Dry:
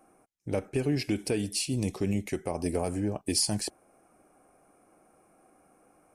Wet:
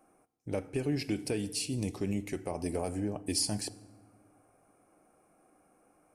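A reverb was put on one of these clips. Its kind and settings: FDN reverb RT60 1.3 s, low-frequency decay 1.55×, high-frequency decay 0.65×, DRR 15.5 dB; trim -4 dB

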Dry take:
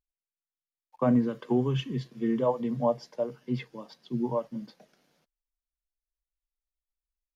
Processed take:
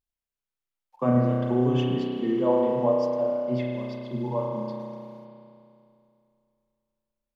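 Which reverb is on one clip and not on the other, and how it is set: spring tank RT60 2.6 s, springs 32 ms, chirp 25 ms, DRR -2.5 dB; trim -1 dB

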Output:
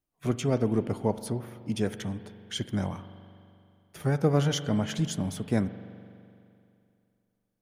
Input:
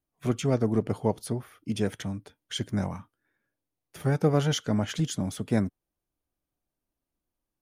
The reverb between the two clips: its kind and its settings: spring tank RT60 2.6 s, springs 42 ms, chirp 65 ms, DRR 12.5 dB; trim -1 dB

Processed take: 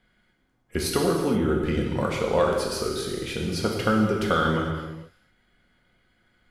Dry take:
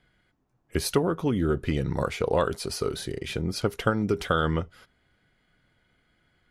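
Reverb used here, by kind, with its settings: gated-style reverb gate 500 ms falling, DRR -1 dB; trim -1 dB

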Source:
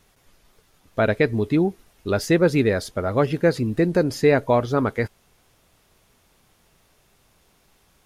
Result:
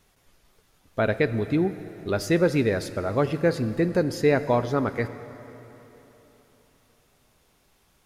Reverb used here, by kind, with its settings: plate-style reverb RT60 3.6 s, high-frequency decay 0.8×, DRR 12 dB; trim -3.5 dB

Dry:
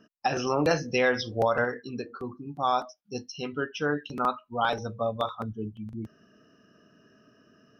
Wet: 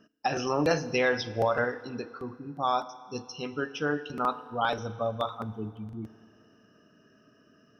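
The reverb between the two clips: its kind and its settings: FDN reverb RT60 2.4 s, low-frequency decay 0.8×, high-frequency decay 0.8×, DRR 14.5 dB; trim -1.5 dB

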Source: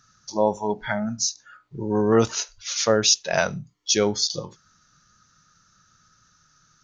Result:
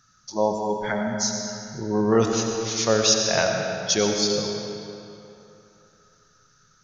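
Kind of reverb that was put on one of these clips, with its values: algorithmic reverb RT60 2.9 s, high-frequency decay 0.75×, pre-delay 45 ms, DRR 2 dB; trim -1.5 dB

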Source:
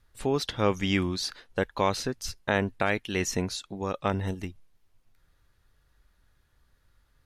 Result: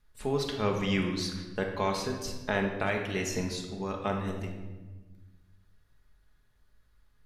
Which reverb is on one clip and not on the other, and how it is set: simulated room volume 920 m³, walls mixed, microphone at 1.4 m; trim -5.5 dB

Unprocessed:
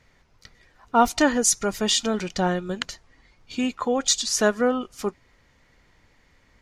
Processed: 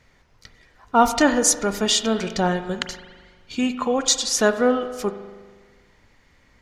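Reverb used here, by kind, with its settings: spring tank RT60 1.5 s, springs 40 ms, chirp 60 ms, DRR 9.5 dB; trim +2 dB

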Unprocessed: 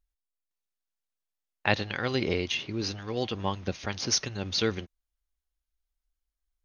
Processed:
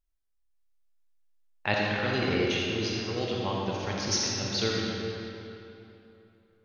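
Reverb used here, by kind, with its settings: algorithmic reverb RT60 3 s, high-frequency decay 0.75×, pre-delay 10 ms, DRR -3.5 dB; trim -3.5 dB

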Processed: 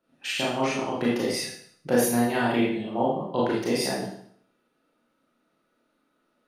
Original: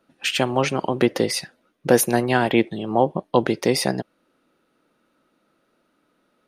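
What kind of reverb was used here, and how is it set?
Schroeder reverb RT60 0.61 s, combs from 26 ms, DRR -6.5 dB; trim -12 dB

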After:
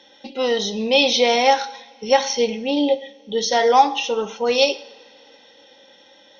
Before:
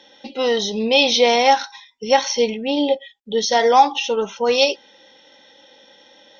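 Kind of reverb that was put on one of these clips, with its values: two-slope reverb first 0.6 s, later 3.9 s, from -22 dB, DRR 11 dB; trim -1.5 dB

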